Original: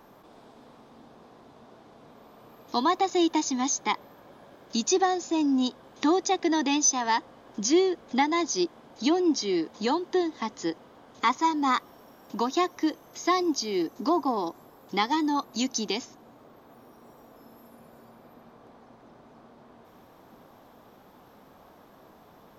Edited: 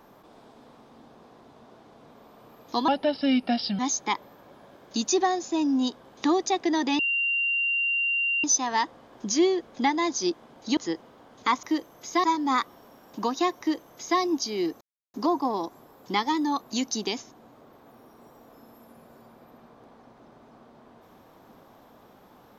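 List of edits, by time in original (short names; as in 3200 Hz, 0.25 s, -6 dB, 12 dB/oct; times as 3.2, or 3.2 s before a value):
2.88–3.58 speed 77%
6.78 add tone 2770 Hz -22.5 dBFS 1.45 s
9.11–10.54 cut
12.75–13.36 copy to 11.4
13.97 insert silence 0.33 s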